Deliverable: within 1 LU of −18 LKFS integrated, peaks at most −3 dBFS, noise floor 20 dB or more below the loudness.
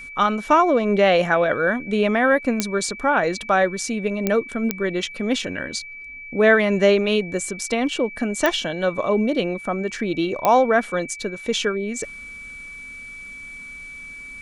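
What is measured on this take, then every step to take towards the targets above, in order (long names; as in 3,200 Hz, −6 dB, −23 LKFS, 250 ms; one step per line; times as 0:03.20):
number of clicks 5; interfering tone 2,300 Hz; level of the tone −35 dBFS; integrated loudness −21.0 LKFS; sample peak −2.5 dBFS; target loudness −18.0 LKFS
→ click removal
notch filter 2,300 Hz, Q 30
level +3 dB
brickwall limiter −3 dBFS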